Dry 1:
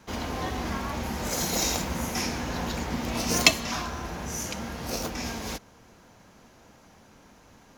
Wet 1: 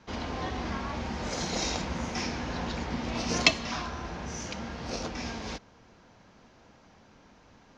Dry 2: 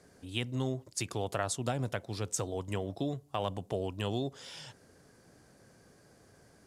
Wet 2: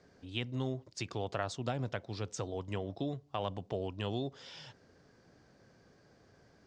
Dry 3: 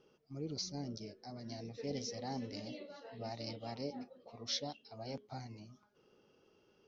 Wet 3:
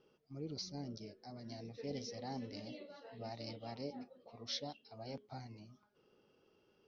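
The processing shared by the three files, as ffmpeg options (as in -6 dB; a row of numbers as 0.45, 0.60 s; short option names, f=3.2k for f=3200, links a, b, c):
-af "lowpass=f=5.7k:w=0.5412,lowpass=f=5.7k:w=1.3066,volume=-2.5dB"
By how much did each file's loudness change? -3.5, -3.0, -3.0 LU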